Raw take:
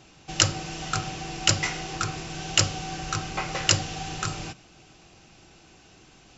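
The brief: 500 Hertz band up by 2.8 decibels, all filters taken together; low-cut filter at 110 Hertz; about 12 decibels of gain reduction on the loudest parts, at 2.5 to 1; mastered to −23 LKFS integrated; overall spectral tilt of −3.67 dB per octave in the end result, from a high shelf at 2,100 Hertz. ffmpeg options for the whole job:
ffmpeg -i in.wav -af "highpass=110,equalizer=frequency=500:width_type=o:gain=4,highshelf=frequency=2100:gain=-6.5,acompressor=threshold=-38dB:ratio=2.5,volume=15.5dB" out.wav

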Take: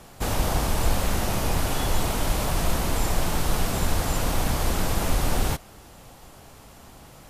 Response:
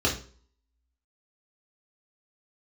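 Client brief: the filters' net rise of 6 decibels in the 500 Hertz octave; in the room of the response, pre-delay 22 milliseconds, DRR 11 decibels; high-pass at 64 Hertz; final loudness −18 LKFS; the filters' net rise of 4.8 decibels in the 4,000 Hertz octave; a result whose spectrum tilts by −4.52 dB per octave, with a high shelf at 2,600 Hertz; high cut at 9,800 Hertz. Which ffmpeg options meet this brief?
-filter_complex "[0:a]highpass=64,lowpass=9800,equalizer=frequency=500:width_type=o:gain=7.5,highshelf=frequency=2600:gain=-3.5,equalizer=frequency=4000:width_type=o:gain=9,asplit=2[link_01][link_02];[1:a]atrim=start_sample=2205,adelay=22[link_03];[link_02][link_03]afir=irnorm=-1:irlink=0,volume=-23.5dB[link_04];[link_01][link_04]amix=inputs=2:normalize=0,volume=6dB"

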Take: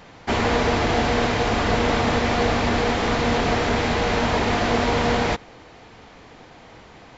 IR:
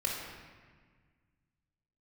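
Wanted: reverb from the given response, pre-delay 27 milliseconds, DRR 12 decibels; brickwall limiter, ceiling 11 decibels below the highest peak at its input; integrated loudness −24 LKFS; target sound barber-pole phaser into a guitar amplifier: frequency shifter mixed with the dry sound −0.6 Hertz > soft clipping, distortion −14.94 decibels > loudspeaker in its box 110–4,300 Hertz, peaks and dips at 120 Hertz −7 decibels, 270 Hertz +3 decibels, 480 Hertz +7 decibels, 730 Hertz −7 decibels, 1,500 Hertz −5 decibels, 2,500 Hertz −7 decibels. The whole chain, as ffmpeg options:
-filter_complex "[0:a]alimiter=limit=-18.5dB:level=0:latency=1,asplit=2[link_01][link_02];[1:a]atrim=start_sample=2205,adelay=27[link_03];[link_02][link_03]afir=irnorm=-1:irlink=0,volume=-17.5dB[link_04];[link_01][link_04]amix=inputs=2:normalize=0,asplit=2[link_05][link_06];[link_06]afreqshift=-0.6[link_07];[link_05][link_07]amix=inputs=2:normalize=1,asoftclip=threshold=-26dB,highpass=110,equalizer=frequency=120:width_type=q:width=4:gain=-7,equalizer=frequency=270:width_type=q:width=4:gain=3,equalizer=frequency=480:width_type=q:width=4:gain=7,equalizer=frequency=730:width_type=q:width=4:gain=-7,equalizer=frequency=1500:width_type=q:width=4:gain=-5,equalizer=frequency=2500:width_type=q:width=4:gain=-7,lowpass=frequency=4300:width=0.5412,lowpass=frequency=4300:width=1.3066,volume=8dB"

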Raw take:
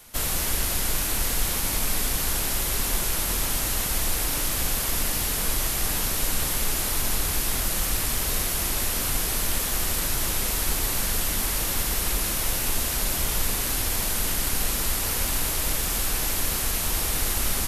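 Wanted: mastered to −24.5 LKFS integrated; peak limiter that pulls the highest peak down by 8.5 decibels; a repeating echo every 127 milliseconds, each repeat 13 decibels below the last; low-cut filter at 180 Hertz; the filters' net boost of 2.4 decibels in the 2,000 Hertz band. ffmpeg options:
ffmpeg -i in.wav -af "highpass=180,equalizer=frequency=2000:width_type=o:gain=3,alimiter=limit=-22dB:level=0:latency=1,aecho=1:1:127|254|381:0.224|0.0493|0.0108,volume=4dB" out.wav

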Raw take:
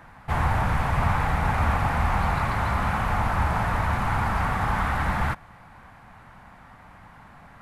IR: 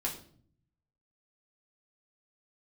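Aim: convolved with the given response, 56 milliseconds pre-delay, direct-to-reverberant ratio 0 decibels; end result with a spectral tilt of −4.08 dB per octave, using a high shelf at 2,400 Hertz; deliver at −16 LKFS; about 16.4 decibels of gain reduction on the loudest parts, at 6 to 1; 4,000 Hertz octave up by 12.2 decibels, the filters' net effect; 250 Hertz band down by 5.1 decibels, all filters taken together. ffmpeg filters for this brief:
-filter_complex "[0:a]equalizer=frequency=250:width_type=o:gain=-8.5,highshelf=frequency=2400:gain=9,equalizer=frequency=4000:width_type=o:gain=8,acompressor=threshold=-37dB:ratio=6,asplit=2[link_01][link_02];[1:a]atrim=start_sample=2205,adelay=56[link_03];[link_02][link_03]afir=irnorm=-1:irlink=0,volume=-3.5dB[link_04];[link_01][link_04]amix=inputs=2:normalize=0,volume=20.5dB"

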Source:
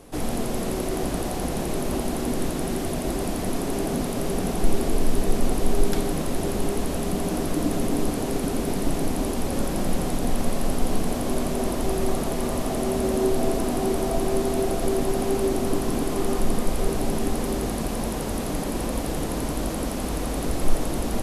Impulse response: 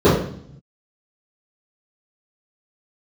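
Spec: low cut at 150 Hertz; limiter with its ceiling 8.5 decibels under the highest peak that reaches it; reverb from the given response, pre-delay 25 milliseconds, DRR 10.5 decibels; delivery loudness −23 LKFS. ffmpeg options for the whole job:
-filter_complex "[0:a]highpass=150,alimiter=limit=-20dB:level=0:latency=1,asplit=2[link_01][link_02];[1:a]atrim=start_sample=2205,adelay=25[link_03];[link_02][link_03]afir=irnorm=-1:irlink=0,volume=-38dB[link_04];[link_01][link_04]amix=inputs=2:normalize=0,volume=4.5dB"

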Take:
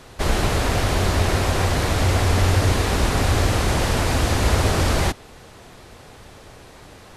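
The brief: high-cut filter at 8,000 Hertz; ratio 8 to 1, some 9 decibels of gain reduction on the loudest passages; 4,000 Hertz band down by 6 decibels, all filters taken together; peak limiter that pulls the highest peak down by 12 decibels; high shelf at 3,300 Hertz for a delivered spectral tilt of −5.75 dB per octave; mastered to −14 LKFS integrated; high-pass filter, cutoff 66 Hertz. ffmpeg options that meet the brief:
ffmpeg -i in.wav -af "highpass=66,lowpass=8000,highshelf=frequency=3300:gain=-5.5,equalizer=frequency=4000:width_type=o:gain=-3.5,acompressor=threshold=-25dB:ratio=8,volume=23.5dB,alimiter=limit=-4.5dB:level=0:latency=1" out.wav

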